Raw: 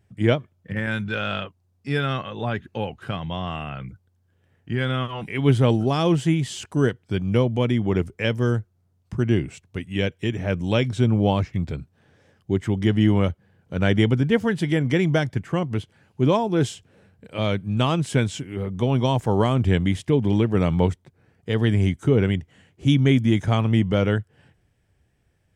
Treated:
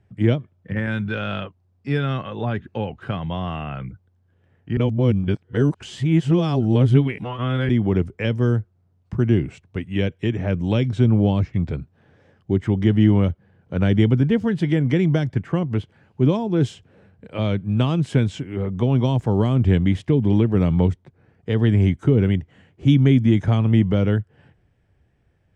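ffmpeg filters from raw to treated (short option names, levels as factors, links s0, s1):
-filter_complex "[0:a]asplit=3[s0][s1][s2];[s0]atrim=end=4.772[s3];[s1]atrim=start=4.768:end=7.692,asetpts=PTS-STARTPTS,areverse[s4];[s2]atrim=start=7.688[s5];[s3][s4]acrossfade=d=0.004:c1=hsin:c2=hsin[s6];[s6][s5]acrossfade=d=0.004:c1=hsin:c2=hsin,aemphasis=mode=reproduction:type=75fm,acrossover=split=360|3000[s7][s8][s9];[s8]acompressor=threshold=0.0355:ratio=6[s10];[s7][s10][s9]amix=inputs=3:normalize=0,volume=1.33"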